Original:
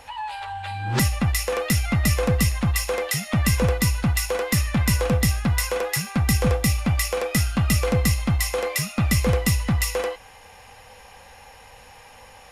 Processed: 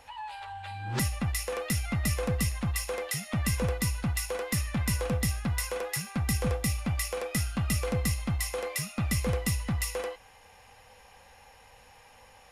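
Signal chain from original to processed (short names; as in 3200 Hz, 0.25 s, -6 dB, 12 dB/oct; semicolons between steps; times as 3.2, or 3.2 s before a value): dynamic EQ 9700 Hz, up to +5 dB, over -46 dBFS, Q 4.7; gain -8.5 dB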